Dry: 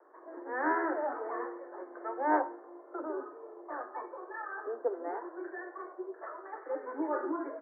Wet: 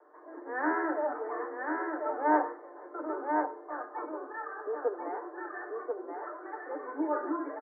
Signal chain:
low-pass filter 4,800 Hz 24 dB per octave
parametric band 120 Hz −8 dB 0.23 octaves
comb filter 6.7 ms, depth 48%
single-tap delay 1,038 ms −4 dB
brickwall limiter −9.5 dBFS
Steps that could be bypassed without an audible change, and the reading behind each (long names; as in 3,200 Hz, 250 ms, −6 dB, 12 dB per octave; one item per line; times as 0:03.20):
low-pass filter 4,800 Hz: nothing at its input above 2,000 Hz
parametric band 120 Hz: nothing at its input below 230 Hz
brickwall limiter −9.5 dBFS: peak of its input −14.5 dBFS